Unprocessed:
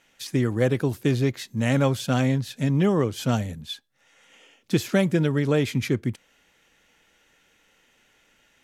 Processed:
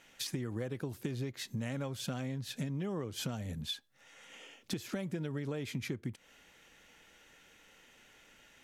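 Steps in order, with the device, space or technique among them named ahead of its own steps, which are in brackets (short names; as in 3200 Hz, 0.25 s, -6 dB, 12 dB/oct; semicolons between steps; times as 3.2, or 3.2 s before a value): serial compression, peaks first (compressor 5:1, threshold -29 dBFS, peak gain reduction 12.5 dB; compressor 2.5:1, threshold -38 dBFS, peak gain reduction 9 dB); gain +1 dB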